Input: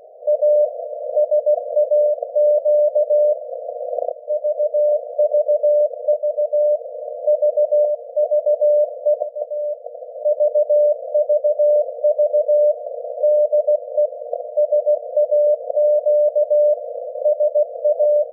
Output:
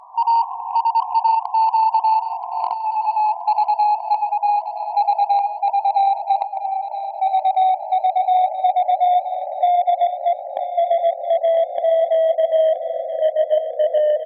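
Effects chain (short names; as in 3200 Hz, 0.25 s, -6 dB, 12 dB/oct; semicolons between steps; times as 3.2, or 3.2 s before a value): speed glide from 156% -> 101%; added harmonics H 3 -20 dB, 5 -24 dB, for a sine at -8.5 dBFS; feedback echo 0.975 s, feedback 37%, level -11 dB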